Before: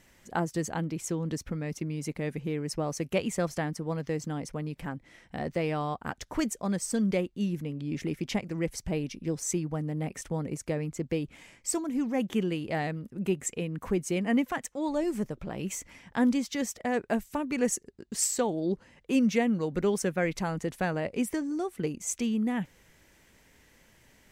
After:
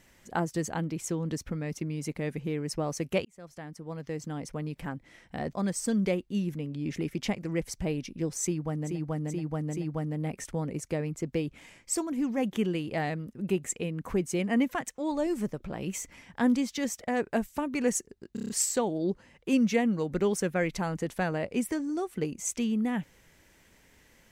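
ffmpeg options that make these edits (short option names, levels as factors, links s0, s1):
-filter_complex "[0:a]asplit=11[s0][s1][s2][s3][s4][s5][s6][s7][s8][s9][s10];[s0]atrim=end=3.25,asetpts=PTS-STARTPTS,afade=t=out:st=3.246:d=0.004:c=hsin[s11];[s1]atrim=start=3.25:end=5.532,asetpts=PTS-STARTPTS,afade=t=in:d=1.39[s12];[s2]atrim=start=6.588:end=10.06[s13];[s3]atrim=start=9.47:end=10.06[s14];[s4]atrim=start=9.47:end=10.06[s15];[s5]atrim=start=9.47:end=18.142[s16];[s6]atrim=start=18.108:end=18.142[s17];[s7]atrim=start=18.108:end=18.142[s18];[s8]atrim=start=18.108:end=18.142[s19];[s9]atrim=start=18.108:end=18.142[s20];[s10]atrim=start=18.108[s21];[s11][s12]concat=n=2:v=0:a=1[s22];[s22][s13]acrossfade=d=0.004:c1=hsin:c2=hsin[s23];[s23][s14]acrossfade=d=0.16:c1=tri:c2=tri[s24];[s24][s15]acrossfade=d=0.16:c1=tri:c2=tri[s25];[s25][s16]acrossfade=d=0.16:c1=tri:c2=tri[s26];[s26][s17]acrossfade=d=0.004:c1=hsin:c2=hsin[s27];[s27][s18]acrossfade=d=0.004:c1=hsin:c2=hsin[s28];[s28][s19]acrossfade=d=0.004:c1=hsin:c2=hsin[s29];[s29][s20]acrossfade=d=0.004:c1=hsin:c2=hsin[s30];[s30][s21]acrossfade=d=0.004:c1=hsin:c2=hsin"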